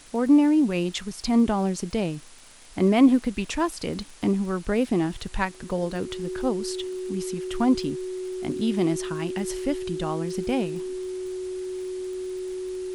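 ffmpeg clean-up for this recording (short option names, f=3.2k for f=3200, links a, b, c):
-af "adeclick=t=4,bandreject=f=370:w=30,afwtdn=0.004"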